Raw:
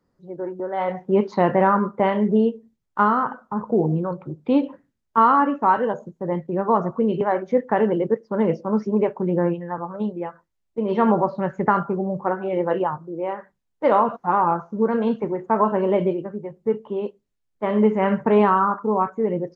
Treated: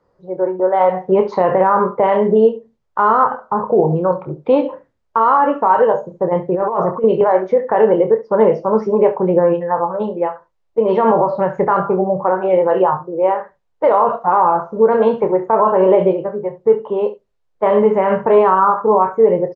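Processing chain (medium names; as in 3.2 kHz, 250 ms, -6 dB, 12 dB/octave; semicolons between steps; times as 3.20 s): graphic EQ 250/500/1000 Hz -8/+9/+5 dB; peak limiter -10 dBFS, peak gain reduction 10.5 dB; distance through air 79 m; early reflections 27 ms -8.5 dB, 70 ms -15.5 dB; 6.11–7.04 s: compressor with a negative ratio -21 dBFS, ratio -0.5; trim +5.5 dB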